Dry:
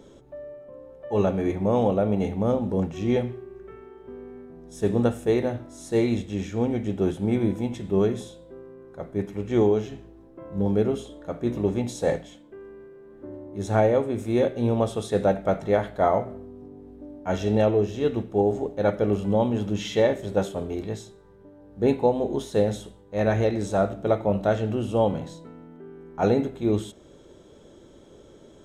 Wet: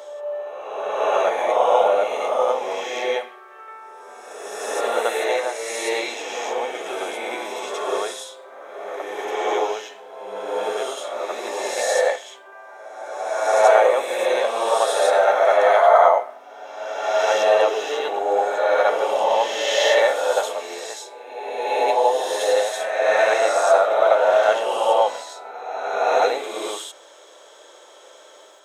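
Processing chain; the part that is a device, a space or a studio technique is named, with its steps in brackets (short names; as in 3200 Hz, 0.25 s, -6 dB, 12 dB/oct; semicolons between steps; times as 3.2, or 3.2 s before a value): ghost voice (reverse; reverb RT60 1.8 s, pre-delay 52 ms, DRR -3.5 dB; reverse; HPF 660 Hz 24 dB/oct); gain +8.5 dB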